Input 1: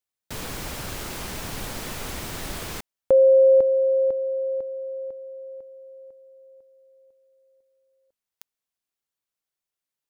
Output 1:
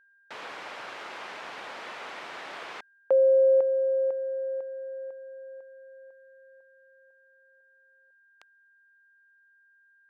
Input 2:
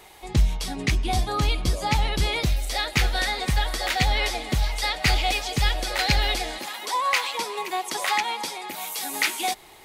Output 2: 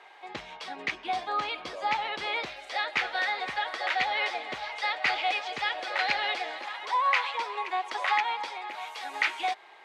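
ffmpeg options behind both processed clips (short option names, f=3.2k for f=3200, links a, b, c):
-af "highpass=650,lowpass=2.5k,aeval=exprs='val(0)+0.001*sin(2*PI*1600*n/s)':c=same"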